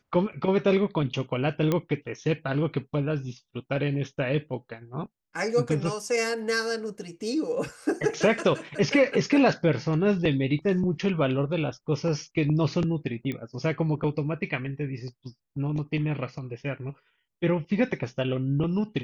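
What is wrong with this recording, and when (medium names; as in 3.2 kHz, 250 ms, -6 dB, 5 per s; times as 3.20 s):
1.72 s: pop -12 dBFS
13.32 s: pop -20 dBFS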